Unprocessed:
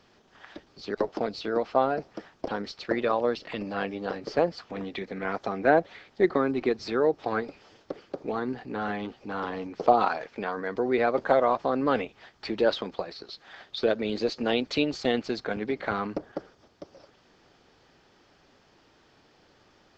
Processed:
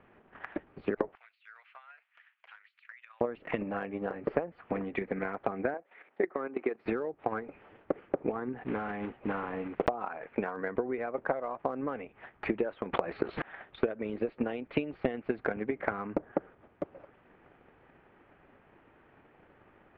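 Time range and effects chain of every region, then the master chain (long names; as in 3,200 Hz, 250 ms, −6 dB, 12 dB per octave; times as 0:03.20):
0:01.15–0:03.21: Bessel high-pass filter 2,900 Hz, order 4 + downward compressor 16 to 1, threshold −49 dBFS
0:05.74–0:06.86: high-pass filter 370 Hz + output level in coarse steps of 10 dB
0:08.61–0:09.90: one scale factor per block 3 bits + low-pass filter 5,700 Hz
0:12.93–0:13.42: transient designer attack +6 dB, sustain +2 dB + envelope flattener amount 70%
whole clip: Butterworth low-pass 2,500 Hz 36 dB per octave; downward compressor 12 to 1, threshold −32 dBFS; transient designer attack +8 dB, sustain 0 dB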